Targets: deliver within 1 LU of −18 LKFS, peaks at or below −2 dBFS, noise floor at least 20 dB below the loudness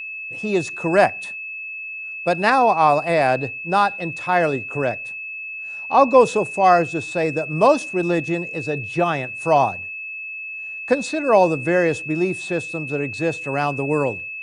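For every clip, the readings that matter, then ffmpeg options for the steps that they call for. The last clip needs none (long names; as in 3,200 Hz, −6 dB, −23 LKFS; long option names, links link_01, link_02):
interfering tone 2,600 Hz; level of the tone −29 dBFS; integrated loudness −20.5 LKFS; sample peak −1.5 dBFS; target loudness −18.0 LKFS
→ -af "bandreject=frequency=2600:width=30"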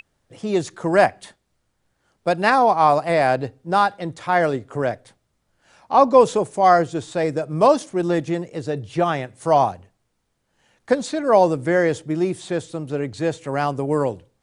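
interfering tone none found; integrated loudness −20.0 LKFS; sample peak −2.0 dBFS; target loudness −18.0 LKFS
→ -af "volume=2dB,alimiter=limit=-2dB:level=0:latency=1"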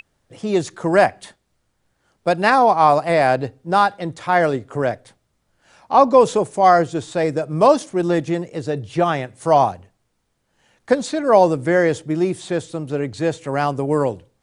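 integrated loudness −18.5 LKFS; sample peak −2.0 dBFS; background noise floor −69 dBFS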